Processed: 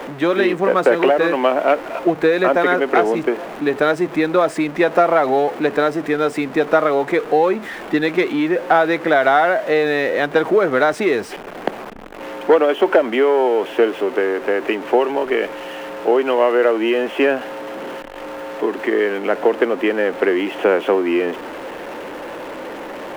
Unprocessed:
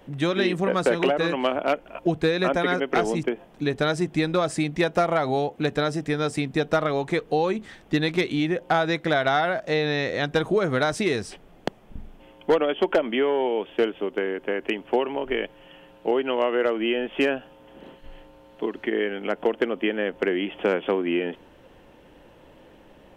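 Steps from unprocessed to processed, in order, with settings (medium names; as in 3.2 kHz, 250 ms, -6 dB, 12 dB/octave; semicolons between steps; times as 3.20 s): jump at every zero crossing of -30.5 dBFS; three-band isolator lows -20 dB, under 250 Hz, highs -14 dB, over 2.5 kHz; trim +7.5 dB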